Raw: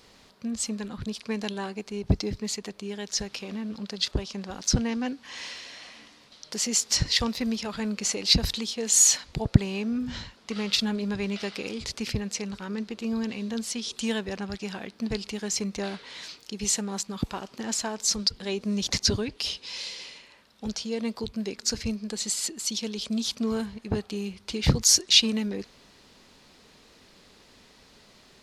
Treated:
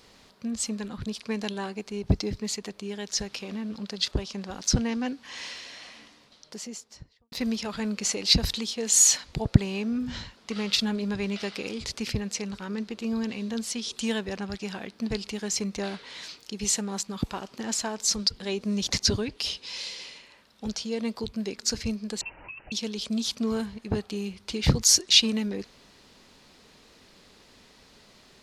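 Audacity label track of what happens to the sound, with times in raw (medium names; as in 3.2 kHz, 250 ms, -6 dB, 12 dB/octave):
5.900000	7.320000	studio fade out
22.210000	22.720000	frequency inversion carrier 2.9 kHz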